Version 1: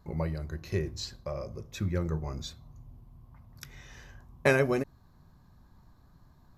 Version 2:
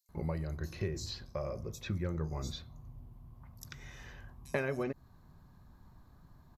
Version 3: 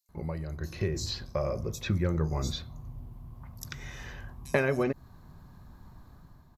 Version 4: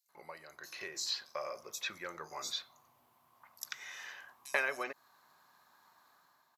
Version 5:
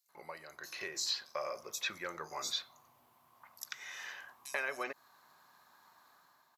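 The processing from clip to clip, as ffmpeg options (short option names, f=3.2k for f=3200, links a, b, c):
-filter_complex "[0:a]acompressor=threshold=-32dB:ratio=4,acrossover=split=5000[a][b];[a]adelay=90[c];[c][b]amix=inputs=2:normalize=0"
-af "dynaudnorm=f=510:g=3:m=7.5dB"
-af "highpass=1k"
-af "alimiter=level_in=0.5dB:limit=-24dB:level=0:latency=1:release=427,volume=-0.5dB,volume=2dB"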